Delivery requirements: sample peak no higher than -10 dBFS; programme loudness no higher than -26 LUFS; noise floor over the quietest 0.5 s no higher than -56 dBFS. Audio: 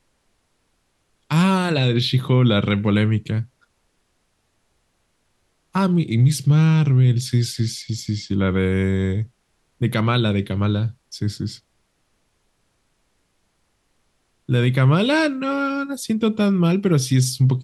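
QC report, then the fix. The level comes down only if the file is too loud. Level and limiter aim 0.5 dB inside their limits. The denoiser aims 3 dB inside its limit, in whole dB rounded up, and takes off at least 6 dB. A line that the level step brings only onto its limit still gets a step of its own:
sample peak -6.0 dBFS: fail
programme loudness -20.0 LUFS: fail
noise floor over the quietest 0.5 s -68 dBFS: pass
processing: trim -6.5 dB

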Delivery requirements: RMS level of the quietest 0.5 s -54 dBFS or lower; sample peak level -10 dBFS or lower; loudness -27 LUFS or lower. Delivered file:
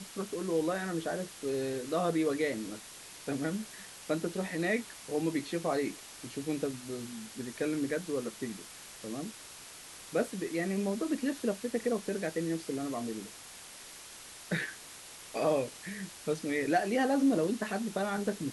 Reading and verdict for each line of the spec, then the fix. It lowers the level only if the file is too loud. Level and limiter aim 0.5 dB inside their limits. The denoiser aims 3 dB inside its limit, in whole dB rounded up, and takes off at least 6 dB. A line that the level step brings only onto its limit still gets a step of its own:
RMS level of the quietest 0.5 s -49 dBFS: fail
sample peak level -16.5 dBFS: pass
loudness -34.0 LUFS: pass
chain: noise reduction 8 dB, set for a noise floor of -49 dBFS

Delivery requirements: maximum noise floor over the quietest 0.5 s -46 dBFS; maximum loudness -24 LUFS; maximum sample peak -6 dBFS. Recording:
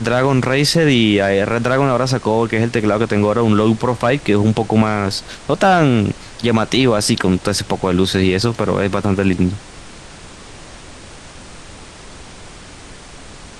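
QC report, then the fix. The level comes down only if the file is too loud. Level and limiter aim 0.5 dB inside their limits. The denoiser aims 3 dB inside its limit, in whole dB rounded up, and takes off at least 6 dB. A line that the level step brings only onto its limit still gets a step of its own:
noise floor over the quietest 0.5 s -37 dBFS: fail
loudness -16.0 LUFS: fail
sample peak -3.0 dBFS: fail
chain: noise reduction 6 dB, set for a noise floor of -37 dBFS; trim -8.5 dB

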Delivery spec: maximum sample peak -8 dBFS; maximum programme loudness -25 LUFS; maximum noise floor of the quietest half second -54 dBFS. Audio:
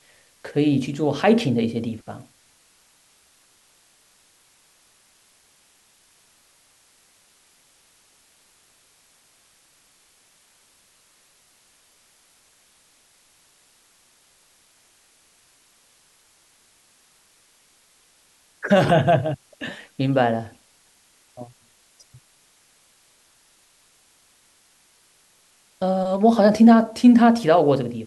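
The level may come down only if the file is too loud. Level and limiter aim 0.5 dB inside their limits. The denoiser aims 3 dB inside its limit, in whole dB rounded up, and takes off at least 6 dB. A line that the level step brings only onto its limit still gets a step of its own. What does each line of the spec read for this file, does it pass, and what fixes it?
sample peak -4.5 dBFS: fail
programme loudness -19.0 LUFS: fail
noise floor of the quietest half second -59 dBFS: pass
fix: trim -6.5 dB

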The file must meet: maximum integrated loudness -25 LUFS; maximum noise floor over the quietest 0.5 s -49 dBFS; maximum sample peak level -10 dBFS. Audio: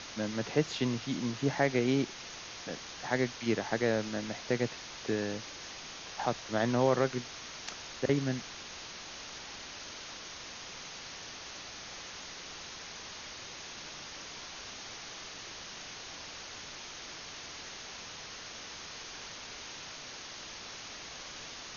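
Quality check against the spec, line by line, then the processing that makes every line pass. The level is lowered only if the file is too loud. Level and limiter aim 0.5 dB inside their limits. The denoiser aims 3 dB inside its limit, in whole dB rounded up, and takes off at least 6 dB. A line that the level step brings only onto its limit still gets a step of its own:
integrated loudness -36.5 LUFS: pass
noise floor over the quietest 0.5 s -45 dBFS: fail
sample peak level -14.0 dBFS: pass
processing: noise reduction 7 dB, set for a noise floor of -45 dBFS

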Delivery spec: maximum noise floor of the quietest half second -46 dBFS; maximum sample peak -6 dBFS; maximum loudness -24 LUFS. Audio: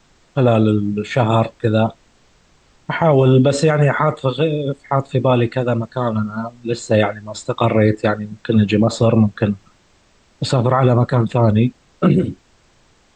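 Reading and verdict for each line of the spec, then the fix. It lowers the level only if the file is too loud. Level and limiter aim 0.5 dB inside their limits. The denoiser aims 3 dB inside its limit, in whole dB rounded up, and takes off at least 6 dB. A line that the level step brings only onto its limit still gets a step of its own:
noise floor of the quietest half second -55 dBFS: pass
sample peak -4.0 dBFS: fail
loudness -17.0 LUFS: fail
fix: trim -7.5 dB

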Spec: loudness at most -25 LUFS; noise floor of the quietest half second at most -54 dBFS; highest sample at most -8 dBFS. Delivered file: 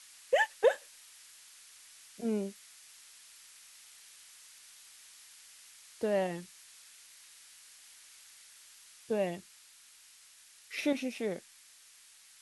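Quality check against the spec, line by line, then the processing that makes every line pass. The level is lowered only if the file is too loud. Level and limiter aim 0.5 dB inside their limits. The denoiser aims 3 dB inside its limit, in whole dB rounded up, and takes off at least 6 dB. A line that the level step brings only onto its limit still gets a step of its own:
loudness -33.5 LUFS: pass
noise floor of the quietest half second -59 dBFS: pass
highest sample -15.0 dBFS: pass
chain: none needed

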